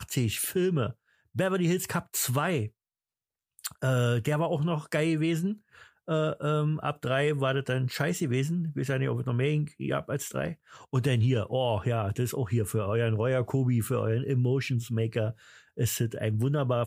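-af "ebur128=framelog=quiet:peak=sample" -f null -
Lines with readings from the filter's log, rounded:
Integrated loudness:
  I:         -28.7 LUFS
  Threshold: -39.0 LUFS
Loudness range:
  LRA:         1.8 LU
  Threshold: -49.1 LUFS
  LRA low:   -29.9 LUFS
  LRA high:  -28.1 LUFS
Sample peak:
  Peak:      -12.7 dBFS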